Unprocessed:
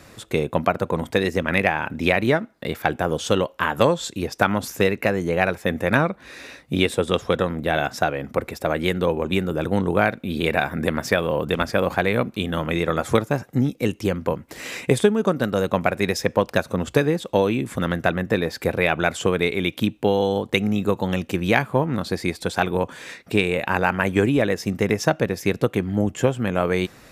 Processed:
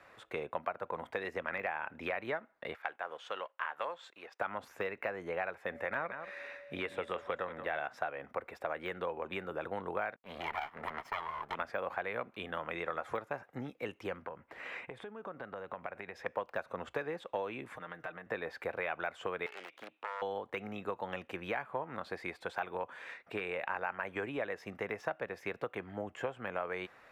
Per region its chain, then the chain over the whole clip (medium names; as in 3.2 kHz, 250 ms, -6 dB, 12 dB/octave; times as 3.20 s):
2.75–4.40 s: companding laws mixed up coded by A + high-pass 1.2 kHz 6 dB/octave + treble shelf 6 kHz -10.5 dB
5.71–7.77 s: peaking EQ 2 kHz +5 dB 0.43 oct + whistle 570 Hz -38 dBFS + delay 178 ms -13.5 dB
10.16–11.55 s: comb filter that takes the minimum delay 0.95 ms + bass shelf 120 Hz -6.5 dB + expander -29 dBFS
14.22–16.26 s: tone controls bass +3 dB, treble -9 dB + compression 12:1, threshold -25 dBFS
17.73–18.26 s: compression 4:1, threshold -31 dBFS + comb 6.5 ms, depth 62%
19.46–20.22 s: self-modulated delay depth 0.99 ms + frequency weighting A + compression 2:1, threshold -33 dBFS
whole clip: de-esser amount 60%; three-band isolator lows -18 dB, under 530 Hz, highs -20 dB, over 2.6 kHz; compression 3:1, threshold -28 dBFS; trim -6 dB